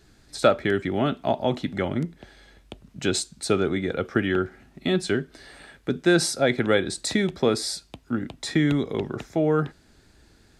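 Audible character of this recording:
background noise floor −58 dBFS
spectral slope −5.0 dB per octave

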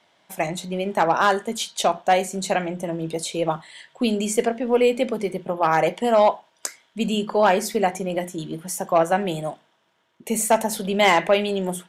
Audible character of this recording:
background noise floor −65 dBFS
spectral slope −4.0 dB per octave

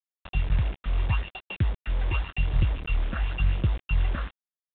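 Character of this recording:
a buzz of ramps at a fixed pitch in blocks of 16 samples
phaser sweep stages 8, 0.89 Hz, lowest notch 110–2,000 Hz
a quantiser's noise floor 6 bits, dither none
mu-law

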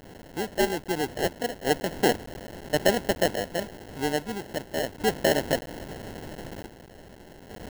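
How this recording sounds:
a quantiser's noise floor 6 bits, dither triangular
sample-and-hold tremolo 1.2 Hz, depth 65%
aliases and images of a low sample rate 1,200 Hz, jitter 0%

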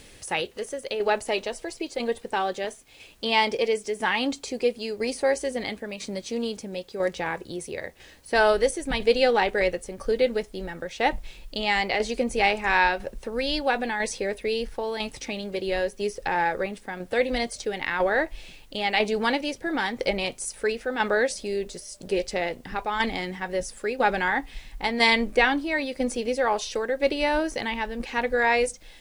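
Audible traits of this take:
tremolo saw down 1 Hz, depth 50%
a quantiser's noise floor 12 bits, dither triangular

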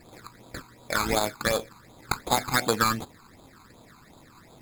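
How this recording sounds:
aliases and images of a low sample rate 2,900 Hz, jitter 0%
phaser sweep stages 12, 2.7 Hz, lowest notch 560–1,900 Hz
AAC

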